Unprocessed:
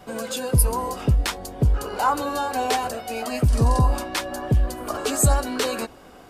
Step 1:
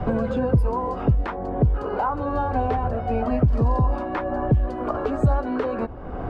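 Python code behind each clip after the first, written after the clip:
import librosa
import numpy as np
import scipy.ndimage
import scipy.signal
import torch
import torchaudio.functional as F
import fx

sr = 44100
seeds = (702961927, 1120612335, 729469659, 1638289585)

y = scipy.signal.sosfilt(scipy.signal.butter(2, 1200.0, 'lowpass', fs=sr, output='sos'), x)
y = fx.band_squash(y, sr, depth_pct=100)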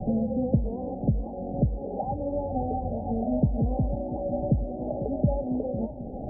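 y = scipy.signal.sosfilt(scipy.signal.cheby1(6, 9, 830.0, 'lowpass', fs=sr, output='sos'), x)
y = fx.echo_warbled(y, sr, ms=496, feedback_pct=64, rate_hz=2.8, cents=156, wet_db=-13)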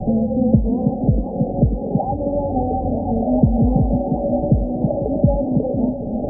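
y = fx.echo_stepped(x, sr, ms=321, hz=200.0, octaves=0.7, feedback_pct=70, wet_db=-2)
y = y * librosa.db_to_amplitude(8.0)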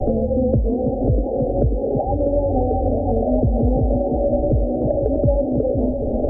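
y = fx.fixed_phaser(x, sr, hz=440.0, stages=4)
y = fx.band_squash(y, sr, depth_pct=70)
y = y * librosa.db_to_amplitude(3.5)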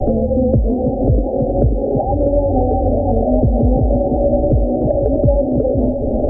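y = fx.notch(x, sr, hz=470.0, q=15.0)
y = y + 10.0 ** (-15.0 / 20.0) * np.pad(y, (int(608 * sr / 1000.0), 0))[:len(y)]
y = y * librosa.db_to_amplitude(4.0)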